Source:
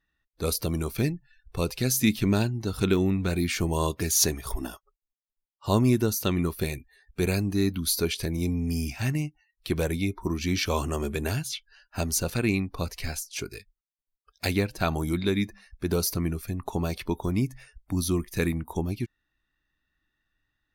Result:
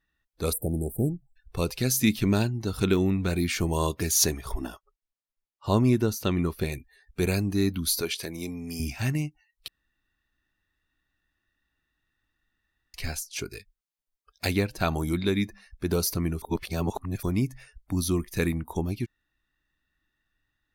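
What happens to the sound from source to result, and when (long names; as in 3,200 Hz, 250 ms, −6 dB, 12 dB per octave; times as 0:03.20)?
0:00.53–0:01.36: time-frequency box erased 840–7,500 Hz
0:04.37–0:06.72: high-shelf EQ 5,900 Hz −8.5 dB
0:08.01–0:08.80: high-pass filter 460 Hz 6 dB per octave
0:09.68–0:12.94: fill with room tone
0:16.42–0:17.23: reverse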